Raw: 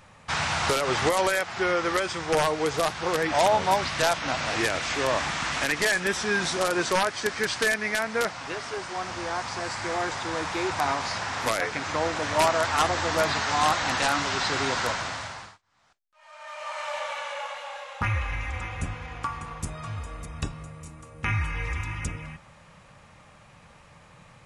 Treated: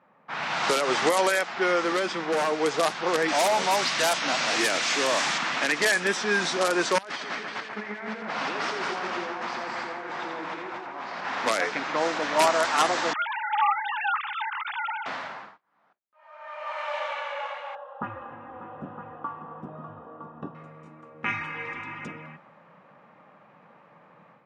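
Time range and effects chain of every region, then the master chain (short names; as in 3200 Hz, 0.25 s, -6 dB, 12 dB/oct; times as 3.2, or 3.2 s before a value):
1.84–2.52 resonant high-pass 200 Hz, resonance Q 1.9 + hard clip -23 dBFS
3.28–5.38 high shelf 3600 Hz +9 dB + hard clip -20.5 dBFS
6.98–11.25 negative-ratio compressor -37 dBFS + split-band echo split 2500 Hz, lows 0.138 s, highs 84 ms, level -4 dB
13.13–15.06 sine-wave speech + rippled Chebyshev high-pass 830 Hz, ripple 3 dB
17.75–20.55 running mean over 20 samples + echo 0.962 s -9.5 dB
whole clip: AGC gain up to 7 dB; HPF 190 Hz 24 dB/oct; low-pass opened by the level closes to 1400 Hz, open at -12.5 dBFS; gain -5.5 dB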